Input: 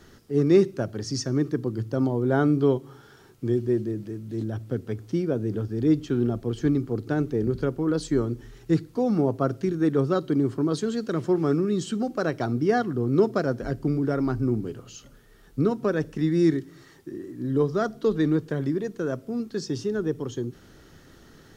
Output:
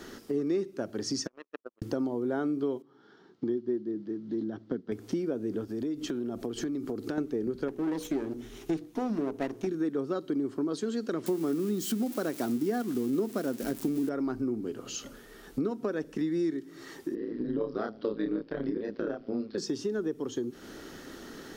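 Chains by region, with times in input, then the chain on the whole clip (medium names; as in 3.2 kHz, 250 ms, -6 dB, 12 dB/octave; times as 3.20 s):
1.27–1.82 s: vowel filter e + tilt EQ +2.5 dB/octave + power-law waveshaper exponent 3
2.82–4.92 s: cabinet simulation 110–4800 Hz, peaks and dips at 180 Hz +10 dB, 320 Hz +3 dB, 560 Hz -3 dB, 2.5 kHz -9 dB + upward expansion, over -44 dBFS
5.64–7.18 s: treble shelf 5.1 kHz +4 dB + compression 4:1, threshold -32 dBFS
7.68–9.67 s: comb filter that takes the minimum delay 0.31 ms + peaking EQ 510 Hz -5.5 dB 0.25 oct + hum notches 60/120/180/240/300/360/420/480 Hz
11.26–14.09 s: zero-crossing glitches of -24 dBFS + peaking EQ 220 Hz +6.5 dB 1.2 oct
17.15–19.58 s: AM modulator 110 Hz, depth 85% + elliptic low-pass 5 kHz + doubling 29 ms -2.5 dB
whole clip: resonant low shelf 180 Hz -9.5 dB, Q 1.5; compression 4:1, threshold -38 dBFS; trim +7 dB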